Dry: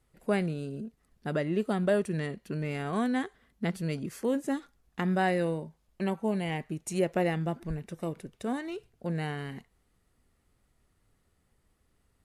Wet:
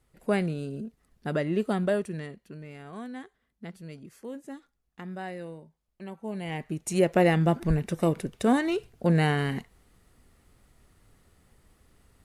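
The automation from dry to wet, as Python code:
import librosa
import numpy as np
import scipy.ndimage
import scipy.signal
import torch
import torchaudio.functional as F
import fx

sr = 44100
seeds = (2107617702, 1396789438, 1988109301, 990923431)

y = fx.gain(x, sr, db=fx.line((1.76, 2.0), (2.65, -10.5), (6.07, -10.5), (6.69, 2.5), (7.67, 10.0)))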